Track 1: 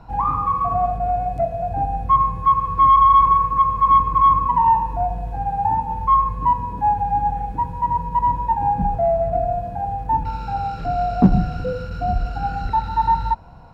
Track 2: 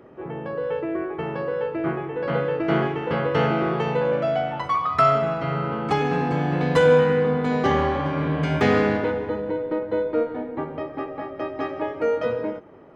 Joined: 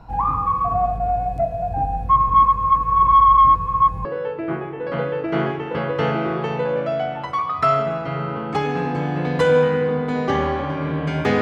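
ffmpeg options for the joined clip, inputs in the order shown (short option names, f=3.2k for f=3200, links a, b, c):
-filter_complex "[0:a]apad=whole_dur=11.41,atrim=end=11.41,asplit=2[a][b];[a]atrim=end=2.292[c];[b]atrim=start=2.288:end=4.052,asetpts=PTS-STARTPTS,areverse[d];[1:a]atrim=start=1.408:end=8.77[e];[c][d]acrossfade=d=0.004:c1=hsin:c2=hsin[f];[f][e]acrossfade=d=0.004:c1=hsin:c2=hsin"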